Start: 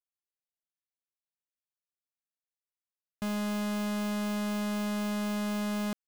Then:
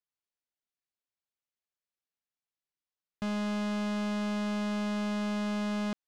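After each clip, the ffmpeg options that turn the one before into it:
ffmpeg -i in.wav -af "lowpass=5700" out.wav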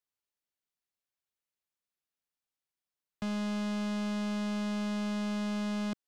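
ffmpeg -i in.wav -filter_complex "[0:a]acrossover=split=250|3000[link_01][link_02][link_03];[link_02]acompressor=threshold=-45dB:ratio=1.5[link_04];[link_01][link_04][link_03]amix=inputs=3:normalize=0" out.wav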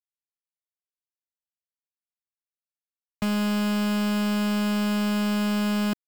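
ffmpeg -i in.wav -af "acrusher=bits=8:dc=4:mix=0:aa=0.000001,volume=9dB" out.wav

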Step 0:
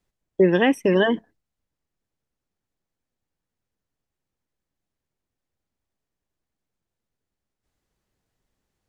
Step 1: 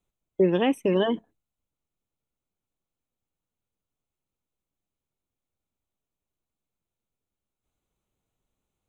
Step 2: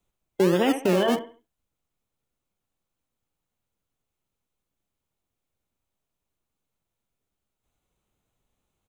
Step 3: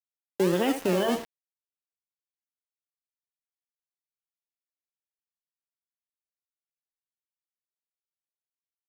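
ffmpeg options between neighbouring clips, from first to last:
ffmpeg -i in.wav -af "superequalizer=11b=0.398:14b=0.282,volume=-4dB" out.wav
ffmpeg -i in.wav -filter_complex "[0:a]alimiter=limit=-16dB:level=0:latency=1:release=66,acrossover=split=310|3900[link_01][link_02][link_03];[link_01]acrusher=samples=36:mix=1:aa=0.000001:lfo=1:lforange=21.6:lforate=1.2[link_04];[link_02]aecho=1:1:68|136|204|272:0.501|0.155|0.0482|0.0149[link_05];[link_04][link_05][link_03]amix=inputs=3:normalize=0,volume=4dB" out.wav
ffmpeg -i in.wav -af "acrusher=bits=5:mix=0:aa=0.000001,volume=-3.5dB" out.wav

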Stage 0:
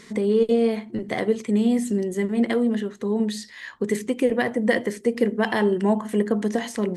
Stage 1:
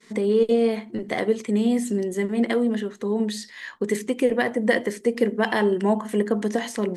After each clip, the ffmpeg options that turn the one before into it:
ffmpeg -i in.wav -af "agate=range=-33dB:threshold=-42dB:ratio=3:detection=peak,equalizer=frequency=75:width_type=o:width=1.8:gain=-10,volume=1dB" out.wav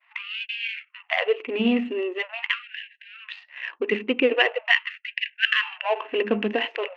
ffmpeg -i in.wav -af "adynamicsmooth=sensitivity=4:basefreq=910,lowpass=frequency=2700:width_type=q:width=15,afftfilt=real='re*gte(b*sr/1024,200*pow(1600/200,0.5+0.5*sin(2*PI*0.43*pts/sr)))':imag='im*gte(b*sr/1024,200*pow(1600/200,0.5+0.5*sin(2*PI*0.43*pts/sr)))':win_size=1024:overlap=0.75" out.wav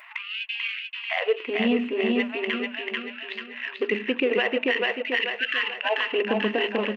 ffmpeg -i in.wav -filter_complex "[0:a]asplit=2[link_01][link_02];[link_02]aecho=0:1:439|878|1317|1756|2195:0.631|0.271|0.117|0.0502|0.0216[link_03];[link_01][link_03]amix=inputs=2:normalize=0,alimiter=limit=-13.5dB:level=0:latency=1:release=48,acompressor=mode=upward:threshold=-35dB:ratio=2.5" out.wav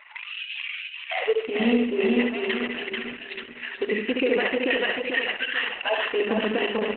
ffmpeg -i in.wav -filter_complex "[0:a]asplit=2[link_01][link_02];[link_02]aecho=0:1:70|140|210|280:0.596|0.173|0.0501|0.0145[link_03];[link_01][link_03]amix=inputs=2:normalize=0" -ar 48000 -c:a libopus -b:a 8k out.opus

